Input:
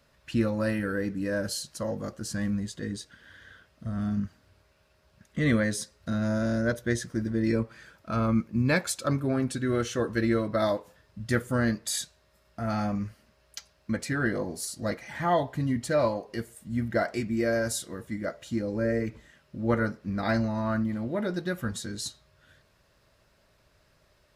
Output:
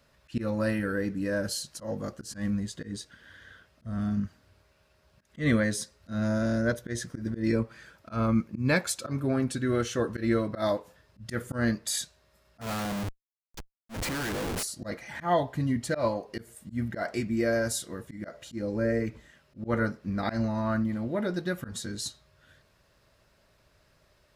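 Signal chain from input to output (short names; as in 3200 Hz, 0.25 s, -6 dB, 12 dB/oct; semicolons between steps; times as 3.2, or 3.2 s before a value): 12.61–14.63 Schmitt trigger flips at -40.5 dBFS; auto swell 0.116 s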